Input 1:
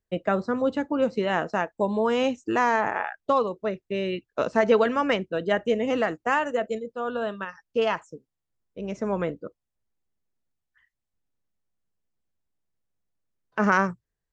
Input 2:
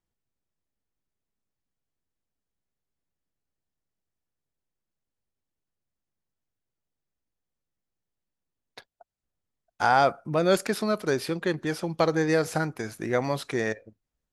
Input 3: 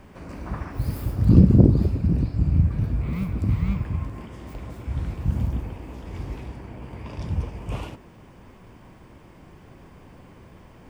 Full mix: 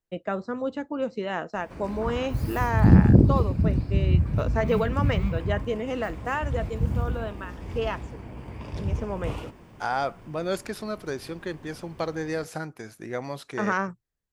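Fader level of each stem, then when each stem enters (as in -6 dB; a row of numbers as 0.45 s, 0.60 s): -5.0 dB, -6.5 dB, -1.5 dB; 0.00 s, 0.00 s, 1.55 s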